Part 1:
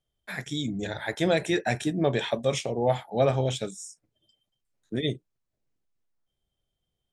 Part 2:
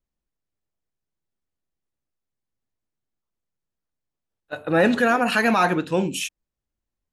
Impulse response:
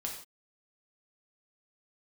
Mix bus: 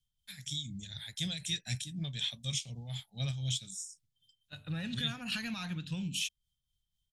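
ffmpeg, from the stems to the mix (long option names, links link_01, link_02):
-filter_complex "[0:a]tremolo=f=4:d=0.59,volume=-3.5dB[link_01];[1:a]lowpass=frequency=1800:poles=1,acompressor=threshold=-22dB:ratio=6,volume=-1.5dB[link_02];[link_01][link_02]amix=inputs=2:normalize=0,firequalizer=gain_entry='entry(150,0);entry(360,-28);entry(3300,6)':delay=0.05:min_phase=1"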